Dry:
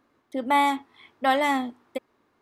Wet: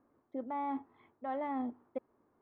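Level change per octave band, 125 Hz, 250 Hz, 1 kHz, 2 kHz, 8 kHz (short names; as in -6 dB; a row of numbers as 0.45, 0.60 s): n/a, -10.0 dB, -15.5 dB, -25.0 dB, under -35 dB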